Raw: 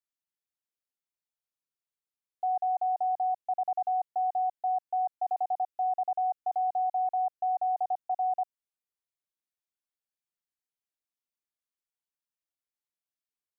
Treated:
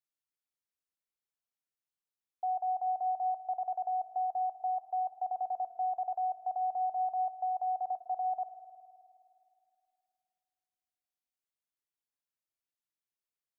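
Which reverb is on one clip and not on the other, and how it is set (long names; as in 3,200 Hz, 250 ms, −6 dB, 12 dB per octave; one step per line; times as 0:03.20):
spring reverb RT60 2.5 s, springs 52 ms, chirp 50 ms, DRR 10.5 dB
level −4 dB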